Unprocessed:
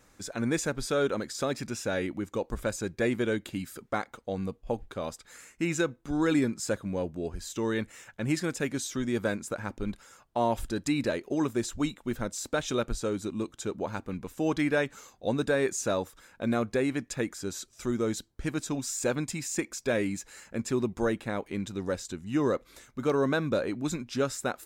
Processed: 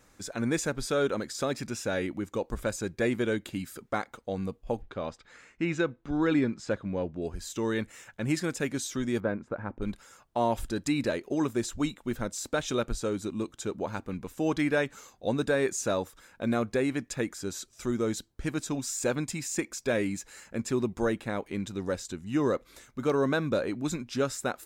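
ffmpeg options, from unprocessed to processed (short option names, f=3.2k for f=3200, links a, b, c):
-filter_complex "[0:a]asettb=1/sr,asplit=3[a][b][c];[a]atrim=end=4.824[d];[b]atrim=start=4.82:end=7.22,asetpts=PTS-STARTPTS,afade=t=in:d=0.004:c=qsin,afade=t=out:st=2.396:d=0.004:c=qsin,lowpass=3.8k[e];[c]atrim=start=7.216[f];[d][e]acrossfade=d=0.004:c1=hsin:c2=qsin[g];[g][f]acrossfade=d=0.004:c1=qsin:c2=hsin,asettb=1/sr,asplit=3[h][i][j];[h]atrim=end=9.204[k];[i]atrim=start=9.2:end=9.82,asetpts=PTS-STARTPTS,afade=t=in:d=0.004:c=qsin,afade=t=out:st=0.616:d=0.004:c=qsin,lowpass=1.5k[l];[j]atrim=start=9.816[m];[k][l]acrossfade=d=0.004:c1=hsin:c2=qsin[n];[n][m]acrossfade=d=0.004:c1=qsin:c2=hsin"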